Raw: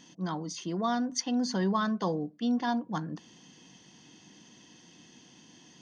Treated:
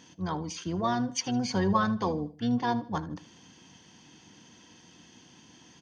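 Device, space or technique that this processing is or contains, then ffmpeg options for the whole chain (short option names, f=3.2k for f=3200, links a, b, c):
octave pedal: -filter_complex "[0:a]highpass=81,asplit=3[a][b][c];[a]afade=t=out:st=1.07:d=0.02[d];[b]aecho=1:1:5.4:0.37,afade=t=in:st=1.07:d=0.02,afade=t=out:st=1.91:d=0.02[e];[c]afade=t=in:st=1.91:d=0.02[f];[d][e][f]amix=inputs=3:normalize=0,equalizer=f=950:t=o:w=0.51:g=3.5,aecho=1:1:78|156|234:0.126|0.0428|0.0146,asplit=2[g][h];[h]asetrate=22050,aresample=44100,atempo=2,volume=-9dB[i];[g][i]amix=inputs=2:normalize=0"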